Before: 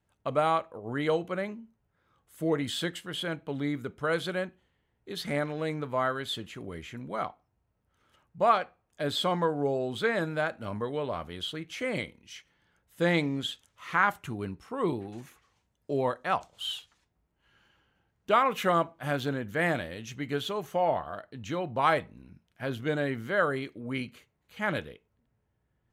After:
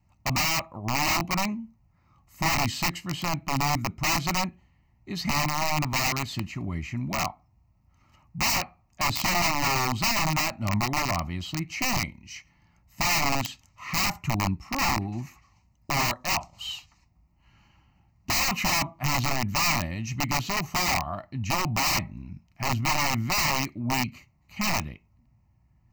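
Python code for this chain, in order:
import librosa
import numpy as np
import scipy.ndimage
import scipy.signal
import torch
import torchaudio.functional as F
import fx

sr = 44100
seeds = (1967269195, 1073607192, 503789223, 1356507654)

y = fx.low_shelf(x, sr, hz=320.0, db=7.0)
y = (np.mod(10.0 ** (23.5 / 20.0) * y + 1.0, 2.0) - 1.0) / 10.0 ** (23.5 / 20.0)
y = fx.fixed_phaser(y, sr, hz=2300.0, stages=8)
y = y * 10.0 ** (7.5 / 20.0)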